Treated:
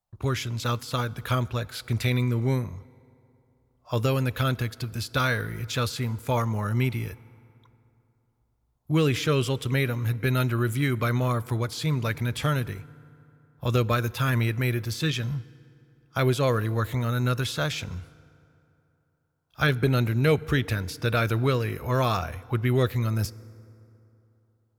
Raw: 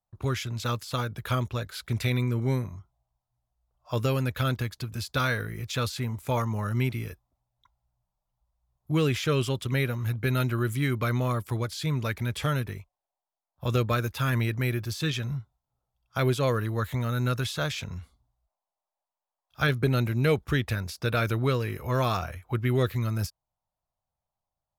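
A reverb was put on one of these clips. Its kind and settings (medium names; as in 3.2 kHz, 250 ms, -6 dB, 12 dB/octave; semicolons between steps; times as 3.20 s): FDN reverb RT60 3 s, high-frequency decay 0.55×, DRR 19.5 dB; trim +2 dB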